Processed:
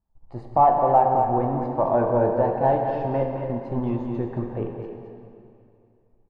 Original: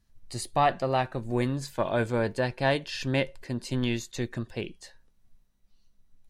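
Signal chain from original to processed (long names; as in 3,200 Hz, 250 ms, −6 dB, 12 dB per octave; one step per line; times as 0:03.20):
leveller curve on the samples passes 2
low-pass with resonance 860 Hz, resonance Q 4
single-tap delay 220 ms −6.5 dB
dense smooth reverb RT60 2.6 s, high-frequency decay 0.9×, DRR 3 dB
level −6 dB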